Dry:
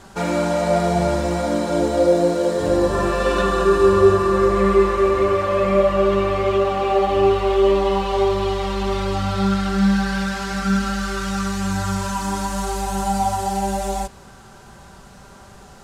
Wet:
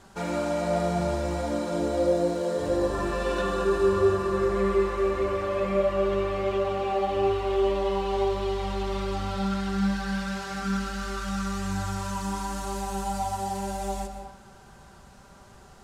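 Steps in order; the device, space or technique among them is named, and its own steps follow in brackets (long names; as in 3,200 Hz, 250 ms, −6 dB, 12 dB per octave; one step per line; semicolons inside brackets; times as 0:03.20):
compressed reverb return (on a send at −6 dB: convolution reverb RT60 1.1 s, pre-delay 119 ms + downward compressor, threshold −17 dBFS, peak gain reduction 8 dB)
on the sum: level −8.5 dB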